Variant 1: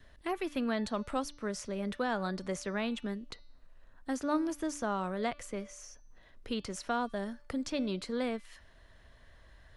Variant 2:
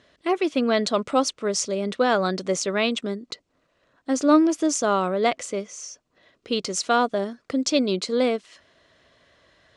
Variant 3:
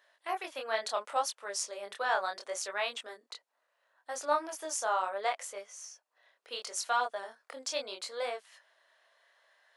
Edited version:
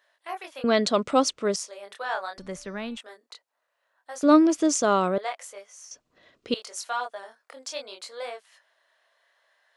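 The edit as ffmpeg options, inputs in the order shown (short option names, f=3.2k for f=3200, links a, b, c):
-filter_complex "[1:a]asplit=3[a][b][c];[2:a]asplit=5[d][e][f][g][h];[d]atrim=end=0.642[i];[a]atrim=start=0.638:end=1.562[j];[e]atrim=start=1.558:end=2.382[k];[0:a]atrim=start=2.378:end=2.972[l];[f]atrim=start=2.968:end=4.232[m];[b]atrim=start=4.228:end=5.182[n];[g]atrim=start=5.178:end=5.912[o];[c]atrim=start=5.908:end=6.542[p];[h]atrim=start=6.538[q];[i][j]acrossfade=d=0.004:c1=hsin:c2=hsin[r];[r][k]acrossfade=d=0.004:c1=hsin:c2=hsin[s];[s][l]acrossfade=d=0.004:c1=hsin:c2=hsin[t];[t][m]acrossfade=d=0.004:c1=hsin:c2=hsin[u];[u][n]acrossfade=d=0.004:c1=hsin:c2=hsin[v];[v][o]acrossfade=d=0.004:c1=hsin:c2=hsin[w];[w][p]acrossfade=d=0.004:c1=hsin:c2=hsin[x];[x][q]acrossfade=d=0.004:c1=hsin:c2=hsin"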